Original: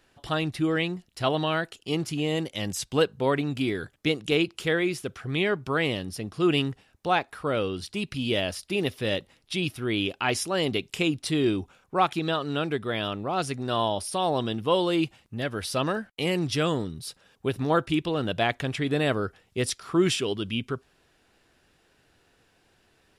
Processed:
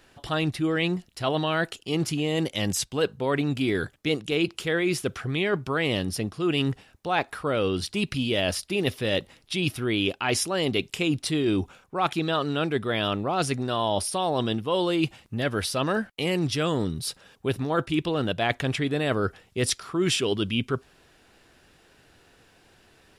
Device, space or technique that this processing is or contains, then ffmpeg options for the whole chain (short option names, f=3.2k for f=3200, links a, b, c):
compression on the reversed sound: -af "areverse,acompressor=threshold=-28dB:ratio=6,areverse,volume=6.5dB"